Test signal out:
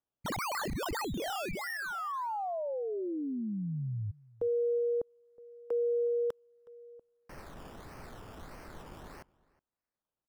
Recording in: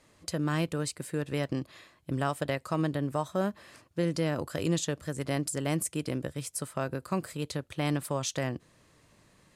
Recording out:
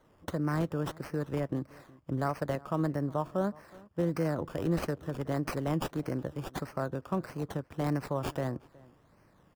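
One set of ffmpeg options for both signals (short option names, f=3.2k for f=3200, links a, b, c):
-filter_complex "[0:a]acrossover=split=360|760|1800[a][b][c][d];[d]acrusher=samples=17:mix=1:aa=0.000001:lfo=1:lforange=10.2:lforate=1.6[e];[a][b][c][e]amix=inputs=4:normalize=0,asplit=2[f][g];[g]adelay=367.3,volume=-23dB,highshelf=f=4k:g=-8.27[h];[f][h]amix=inputs=2:normalize=0,volume=-1dB"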